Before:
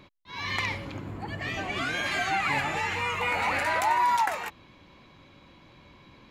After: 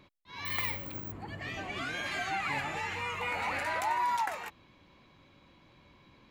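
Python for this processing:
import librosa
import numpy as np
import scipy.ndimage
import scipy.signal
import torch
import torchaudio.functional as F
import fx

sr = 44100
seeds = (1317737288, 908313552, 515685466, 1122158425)

y = fx.resample_bad(x, sr, factor=2, down='filtered', up='zero_stuff', at=(0.45, 1.12))
y = y * 10.0 ** (-6.5 / 20.0)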